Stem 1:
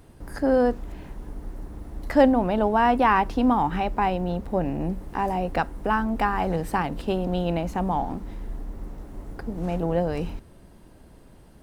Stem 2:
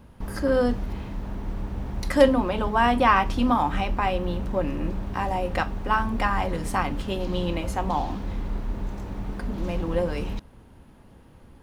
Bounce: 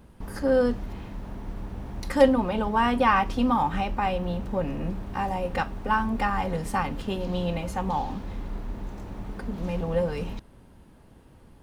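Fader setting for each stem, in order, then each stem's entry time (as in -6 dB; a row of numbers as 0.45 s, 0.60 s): -8.0 dB, -3.5 dB; 0.00 s, 0.00 s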